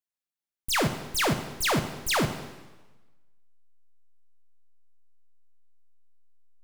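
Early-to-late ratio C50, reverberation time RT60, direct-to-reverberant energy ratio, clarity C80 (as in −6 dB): 10.0 dB, 1.2 s, 7.5 dB, 11.5 dB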